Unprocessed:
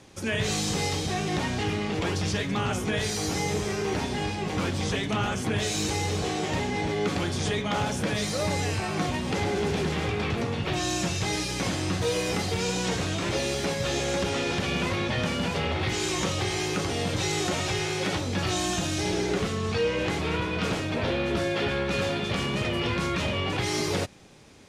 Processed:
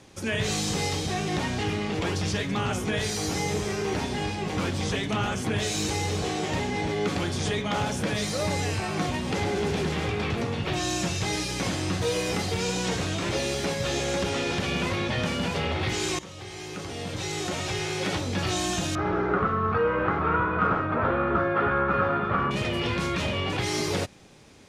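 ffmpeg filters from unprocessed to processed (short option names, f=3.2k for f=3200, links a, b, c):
-filter_complex "[0:a]asettb=1/sr,asplit=3[a][b][c];[a]atrim=end=18.954[d];[b]atrim=start=18.95:end=22.51,asetpts=PTS-STARTPTS,afade=t=in:d=0.004:c=qsin,afade=t=out:st=3.556:d=0.004:c=qsin,lowpass=f=1.3k:t=q:w=6.2[e];[c]atrim=start=22.506[f];[d][e]acrossfade=d=0.004:c1=hsin:c2=qsin[g];[g][f]acrossfade=d=0.004:c1=qsin:c2=hsin,asplit=2[h][i];[h]atrim=end=16.19,asetpts=PTS-STARTPTS,afade=t=out:st=16.186:d=0.004:c=hsin:silence=0.141254[j];[i]atrim=start=16.19,asetpts=PTS-STARTPTS,afade=t=in:d=1.95:silence=0.141254[k];[j][k]concat=n=2:v=0:a=1"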